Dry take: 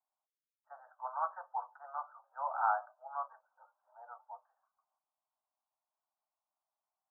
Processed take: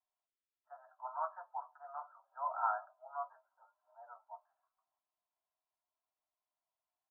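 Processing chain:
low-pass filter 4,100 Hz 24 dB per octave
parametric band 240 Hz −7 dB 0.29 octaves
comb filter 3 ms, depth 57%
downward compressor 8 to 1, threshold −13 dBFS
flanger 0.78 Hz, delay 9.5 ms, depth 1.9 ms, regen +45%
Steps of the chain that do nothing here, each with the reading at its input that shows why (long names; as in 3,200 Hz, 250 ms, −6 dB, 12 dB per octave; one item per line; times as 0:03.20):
low-pass filter 4,100 Hz: nothing at its input above 1,600 Hz
parametric band 240 Hz: nothing at its input below 510 Hz
downward compressor, threshold −13 dBFS: peak of its input −17.5 dBFS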